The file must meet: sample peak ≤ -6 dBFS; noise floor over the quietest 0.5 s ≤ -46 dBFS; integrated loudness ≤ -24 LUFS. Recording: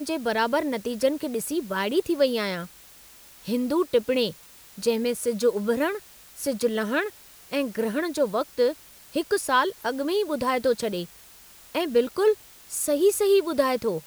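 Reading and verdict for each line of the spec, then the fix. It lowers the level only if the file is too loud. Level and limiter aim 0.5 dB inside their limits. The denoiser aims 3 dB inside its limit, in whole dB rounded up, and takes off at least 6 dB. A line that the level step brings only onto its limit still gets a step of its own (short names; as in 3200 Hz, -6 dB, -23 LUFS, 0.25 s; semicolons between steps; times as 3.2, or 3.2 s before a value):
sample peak -9.0 dBFS: OK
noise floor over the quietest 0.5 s -50 dBFS: OK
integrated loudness -25.5 LUFS: OK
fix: none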